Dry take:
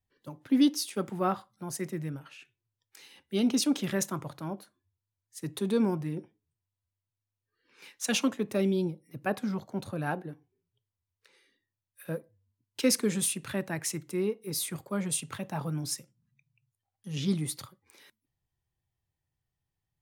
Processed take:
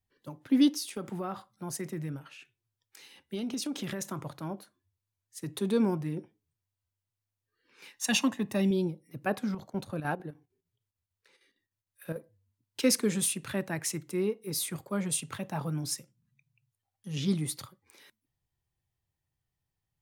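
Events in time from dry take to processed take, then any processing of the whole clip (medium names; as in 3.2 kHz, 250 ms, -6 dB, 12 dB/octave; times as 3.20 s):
0.74–5.55 s: compression 12:1, threshold -30 dBFS
7.94–8.71 s: comb 1.1 ms, depth 54%
9.44–12.16 s: square tremolo 6.6 Hz, depth 60%, duty 70%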